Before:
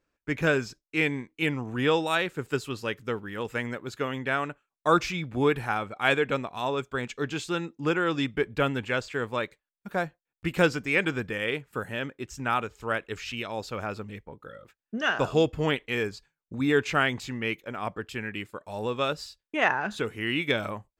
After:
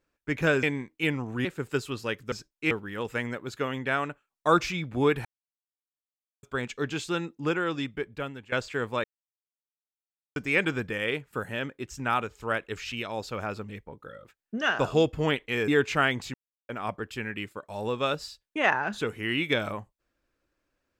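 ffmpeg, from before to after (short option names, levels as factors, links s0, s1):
-filter_complex "[0:a]asplit=13[s0][s1][s2][s3][s4][s5][s6][s7][s8][s9][s10][s11][s12];[s0]atrim=end=0.632[s13];[s1]atrim=start=1.018:end=1.842[s14];[s2]atrim=start=2.238:end=3.112[s15];[s3]atrim=start=0.628:end=1.022[s16];[s4]atrim=start=3.108:end=5.65,asetpts=PTS-STARTPTS,afade=t=out:st=2.538:d=0.004:c=hsin[s17];[s5]atrim=start=5.65:end=6.83,asetpts=PTS-STARTPTS,volume=0[s18];[s6]atrim=start=6.83:end=8.92,asetpts=PTS-STARTPTS,afade=t=in:d=0.004:c=hsin,afade=t=out:st=0.83:d=1.26:silence=0.158489[s19];[s7]atrim=start=8.92:end=9.44,asetpts=PTS-STARTPTS,afade=t=in:d=0.004:c=hsin:silence=0.158489,afade=t=out:st=0.516:d=0.004:c=hsin[s20];[s8]atrim=start=9.44:end=10.76,asetpts=PTS-STARTPTS,volume=0[s21];[s9]atrim=start=10.76:end=16.082,asetpts=PTS-STARTPTS,afade=t=in:d=0.004:c=hsin[s22];[s10]atrim=start=16.658:end=17.32,asetpts=PTS-STARTPTS,afade=t=out:st=0.658:d=0.004:c=hsin[s23];[s11]atrim=start=17.32:end=17.67,asetpts=PTS-STARTPTS,volume=0[s24];[s12]atrim=start=17.67,asetpts=PTS-STARTPTS,afade=t=in:d=0.004:c=hsin[s25];[s13][s14]acrossfade=d=0.004:c1=hsin:c2=hsin[s26];[s26][s15]acrossfade=d=0.004:c1=hsin:c2=hsin[s27];[s27][s16]acrossfade=d=0.004:c1=hsin:c2=hsin[s28];[s17][s18][s19][s20][s21][s22]concat=n=6:v=0:a=1[s29];[s28][s29]acrossfade=d=0.004:c1=hsin:c2=hsin[s30];[s23][s24][s25]concat=n=3:v=0:a=1[s31];[s30][s31]acrossfade=d=0.004:c1=hsin:c2=hsin"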